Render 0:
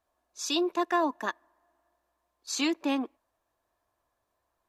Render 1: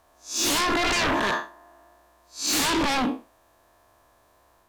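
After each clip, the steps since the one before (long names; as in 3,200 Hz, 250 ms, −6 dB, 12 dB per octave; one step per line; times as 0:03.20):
spectrum smeared in time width 164 ms
sine wavefolder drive 16 dB, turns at −20 dBFS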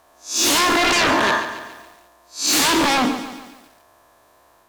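low-shelf EQ 110 Hz −10.5 dB
feedback echo at a low word length 141 ms, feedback 55%, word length 8 bits, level −11 dB
level +6.5 dB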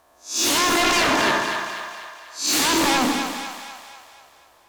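echo with a time of its own for lows and highs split 630 Hz, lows 107 ms, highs 245 ms, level −6.5 dB
level −3 dB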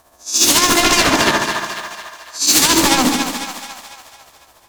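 amplitude tremolo 14 Hz, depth 49%
bass and treble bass +6 dB, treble +6 dB
level +6 dB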